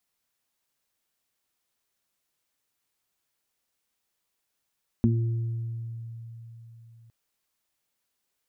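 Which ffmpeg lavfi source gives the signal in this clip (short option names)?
-f lavfi -i "aevalsrc='0.0944*pow(10,-3*t/4.02)*sin(2*PI*115*t)+0.178*pow(10,-3*t/0.27)*sin(2*PI*230*t)+0.0299*pow(10,-3*t/1.42)*sin(2*PI*345*t)':d=2.06:s=44100"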